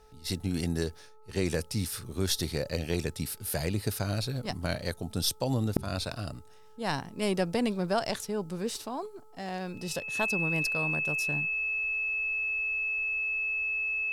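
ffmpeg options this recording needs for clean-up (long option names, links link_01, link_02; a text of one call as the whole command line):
ffmpeg -i in.wav -af "bandreject=frequency=432.9:width_type=h:width=4,bandreject=frequency=865.8:width_type=h:width=4,bandreject=frequency=1298.7:width_type=h:width=4,bandreject=frequency=2600:width=30" out.wav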